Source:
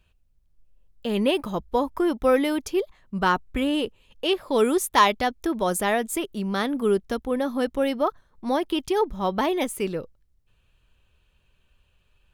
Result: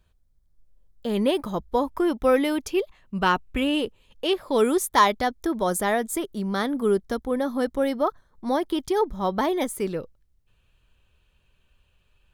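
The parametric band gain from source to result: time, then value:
parametric band 2,700 Hz 0.28 octaves
−14.5 dB
from 0:01.08 −7.5 dB
from 0:01.83 0 dB
from 0:02.70 +6.5 dB
from 0:03.78 −3.5 dB
from 0:04.85 −11.5 dB
from 0:09.89 0 dB

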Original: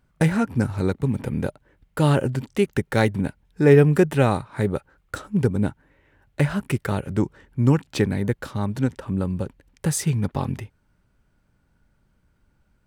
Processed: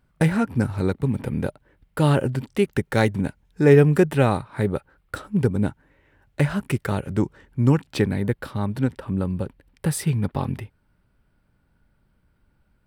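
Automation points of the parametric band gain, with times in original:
parametric band 6,600 Hz 0.41 octaves
0:02.65 −5.5 dB
0:03.10 +2 dB
0:03.75 +2 dB
0:04.39 −8.5 dB
0:05.17 −8.5 dB
0:05.68 −1.5 dB
0:07.63 −1.5 dB
0:08.43 −11.5 dB

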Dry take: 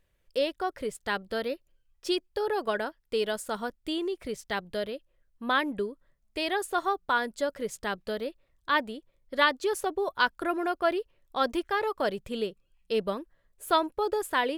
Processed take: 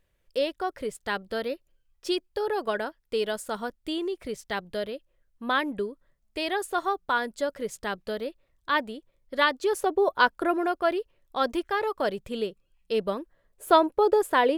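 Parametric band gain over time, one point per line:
parametric band 500 Hz 2.5 octaves
0:09.52 +1 dB
0:10.16 +9 dB
0:10.84 +1.5 dB
0:13.01 +1.5 dB
0:13.67 +8 dB

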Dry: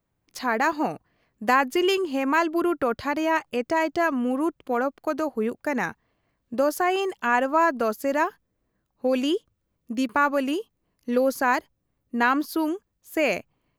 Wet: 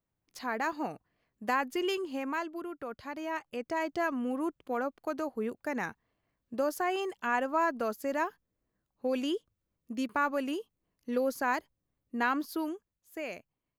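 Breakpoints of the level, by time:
0:02.17 −9.5 dB
0:02.68 −17 dB
0:03.96 −8 dB
0:12.54 −8 dB
0:13.26 −16 dB

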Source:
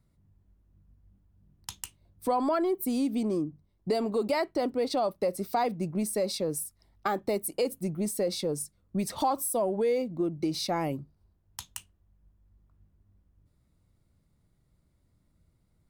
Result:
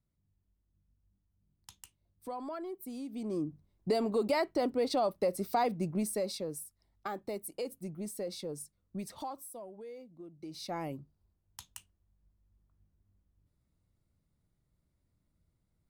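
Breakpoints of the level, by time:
0:03.08 −13.5 dB
0:03.48 −2 dB
0:05.93 −2 dB
0:06.62 −9.5 dB
0:08.97 −9.5 dB
0:09.72 −20 dB
0:10.31 −20 dB
0:10.74 −8 dB

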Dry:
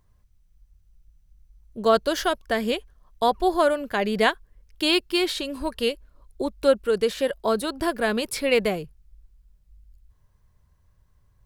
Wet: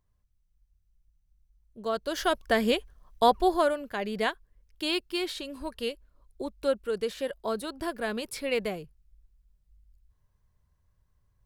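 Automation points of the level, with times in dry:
0:01.97 −11.5 dB
0:02.37 0 dB
0:03.31 0 dB
0:03.89 −8 dB

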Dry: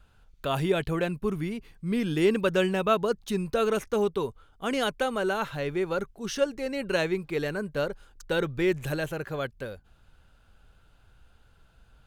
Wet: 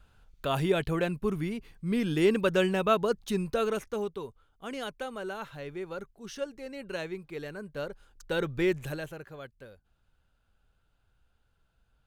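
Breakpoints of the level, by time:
0:03.42 −1 dB
0:04.22 −9.5 dB
0:07.53 −9.5 dB
0:08.63 −1 dB
0:09.35 −12.5 dB

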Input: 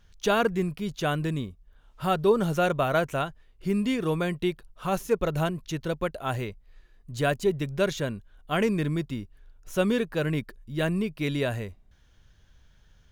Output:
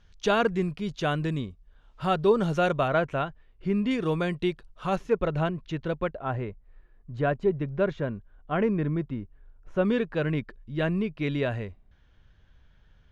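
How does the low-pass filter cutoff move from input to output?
5,600 Hz
from 0:02.88 2,900 Hz
from 0:03.91 5,700 Hz
from 0:04.96 2,900 Hz
from 0:06.13 1,600 Hz
from 0:09.85 3,100 Hz

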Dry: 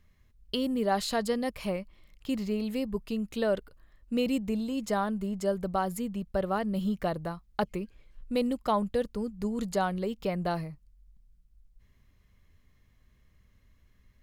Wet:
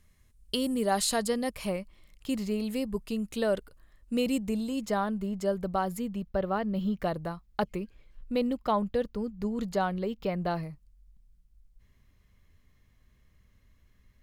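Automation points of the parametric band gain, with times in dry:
parametric band 9,300 Hz 1.1 octaves
+13 dB
from 0:01.24 +7 dB
from 0:04.81 −3 dB
from 0:06.29 −13.5 dB
from 0:06.99 −2 dB
from 0:08.32 −9 dB
from 0:10.63 +1.5 dB

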